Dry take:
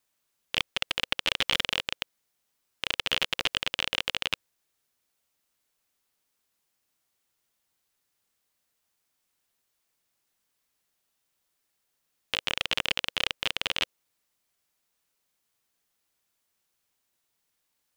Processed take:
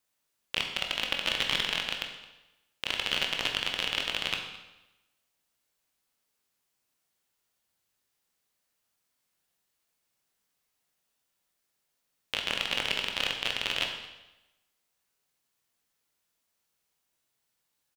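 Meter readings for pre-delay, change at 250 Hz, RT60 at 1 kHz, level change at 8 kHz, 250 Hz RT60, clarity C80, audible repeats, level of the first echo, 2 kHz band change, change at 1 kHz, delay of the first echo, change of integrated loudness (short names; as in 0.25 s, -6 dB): 17 ms, -0.5 dB, 1.0 s, -1.5 dB, 1.0 s, 8.0 dB, 1, -19.5 dB, -1.0 dB, -1.0 dB, 0.218 s, -1.0 dB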